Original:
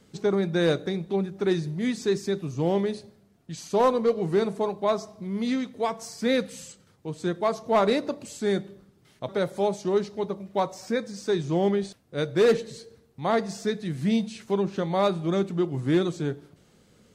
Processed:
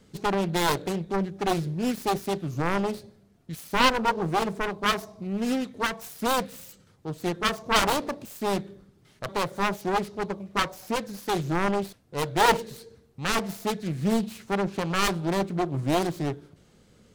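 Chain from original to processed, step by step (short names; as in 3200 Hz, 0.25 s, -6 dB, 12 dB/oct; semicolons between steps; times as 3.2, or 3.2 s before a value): self-modulated delay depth 0.96 ms; low shelf 68 Hz +7.5 dB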